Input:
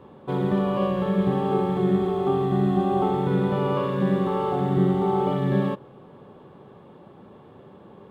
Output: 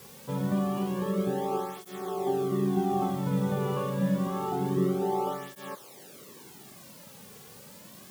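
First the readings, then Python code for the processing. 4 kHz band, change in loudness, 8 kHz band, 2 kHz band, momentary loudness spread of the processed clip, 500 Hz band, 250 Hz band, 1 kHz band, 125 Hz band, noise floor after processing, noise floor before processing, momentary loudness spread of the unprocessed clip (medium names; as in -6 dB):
-4.0 dB, -6.0 dB, no reading, -6.0 dB, 20 LU, -7.0 dB, -6.0 dB, -5.5 dB, -7.0 dB, -50 dBFS, -49 dBFS, 3 LU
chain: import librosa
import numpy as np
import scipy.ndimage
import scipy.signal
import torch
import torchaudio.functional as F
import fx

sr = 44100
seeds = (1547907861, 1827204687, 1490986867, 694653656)

p1 = fx.quant_dither(x, sr, seeds[0], bits=6, dither='triangular')
p2 = x + F.gain(torch.from_numpy(p1), -4.5).numpy()
p3 = fx.flanger_cancel(p2, sr, hz=0.27, depth_ms=3.3)
y = F.gain(torch.from_numpy(p3), -7.5).numpy()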